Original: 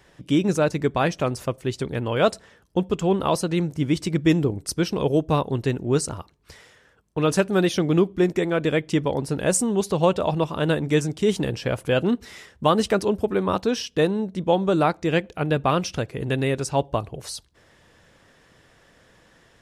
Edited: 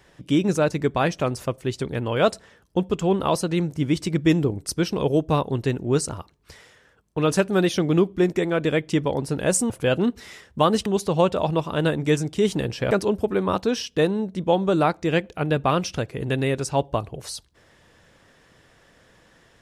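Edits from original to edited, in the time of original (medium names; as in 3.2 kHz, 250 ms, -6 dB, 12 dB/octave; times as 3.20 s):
11.75–12.91 s: move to 9.70 s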